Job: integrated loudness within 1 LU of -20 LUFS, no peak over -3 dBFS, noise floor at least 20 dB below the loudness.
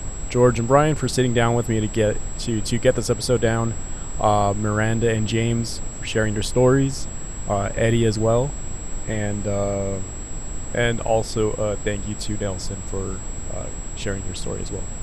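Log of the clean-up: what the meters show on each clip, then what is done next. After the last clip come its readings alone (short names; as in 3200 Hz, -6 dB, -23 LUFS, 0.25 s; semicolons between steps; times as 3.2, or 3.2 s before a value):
steady tone 7700 Hz; tone level -36 dBFS; noise floor -32 dBFS; noise floor target -43 dBFS; loudness -22.5 LUFS; peak -2.0 dBFS; loudness target -20.0 LUFS
-> notch 7700 Hz, Q 30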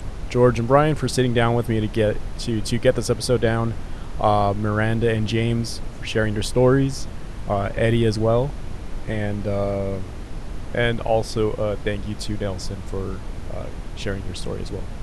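steady tone none; noise floor -33 dBFS; noise floor target -43 dBFS
-> noise print and reduce 10 dB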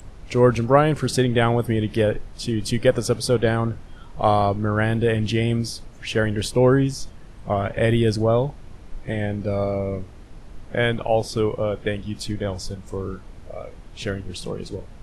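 noise floor -42 dBFS; noise floor target -43 dBFS
-> noise print and reduce 6 dB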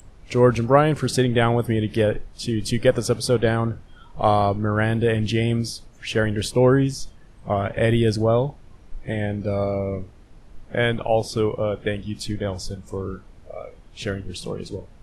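noise floor -47 dBFS; loudness -22.5 LUFS; peak -2.0 dBFS; loudness target -20.0 LUFS
-> gain +2.5 dB; limiter -3 dBFS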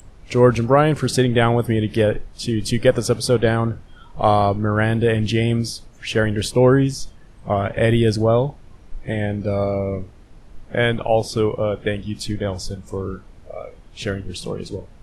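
loudness -20.0 LUFS; peak -3.0 dBFS; noise floor -45 dBFS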